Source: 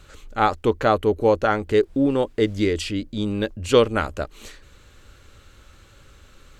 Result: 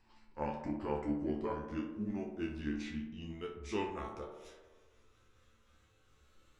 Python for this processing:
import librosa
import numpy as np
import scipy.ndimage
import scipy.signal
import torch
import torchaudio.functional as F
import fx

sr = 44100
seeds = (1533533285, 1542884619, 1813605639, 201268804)

y = fx.pitch_glide(x, sr, semitones=-7.5, runs='ending unshifted')
y = fx.resonator_bank(y, sr, root=38, chord='fifth', decay_s=0.3)
y = fx.echo_tape(y, sr, ms=62, feedback_pct=83, wet_db=-5.5, lp_hz=1700.0, drive_db=21.0, wow_cents=21)
y = F.gain(torch.from_numpy(y), -7.0).numpy()